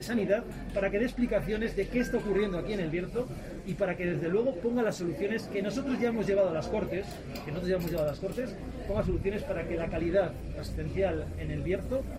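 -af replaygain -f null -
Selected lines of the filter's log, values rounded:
track_gain = +11.3 dB
track_peak = 0.126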